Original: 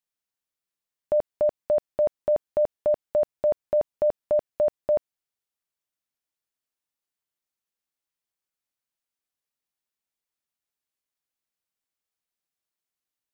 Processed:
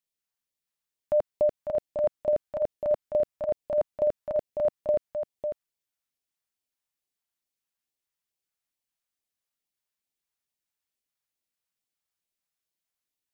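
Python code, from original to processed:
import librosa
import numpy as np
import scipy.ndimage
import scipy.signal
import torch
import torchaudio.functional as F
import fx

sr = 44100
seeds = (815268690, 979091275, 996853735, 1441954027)

y = fx.filter_lfo_notch(x, sr, shape='sine', hz=2.3, low_hz=260.0, high_hz=1500.0, q=1.2)
y = y + 10.0 ** (-8.0 / 20.0) * np.pad(y, (int(549 * sr / 1000.0), 0))[:len(y)]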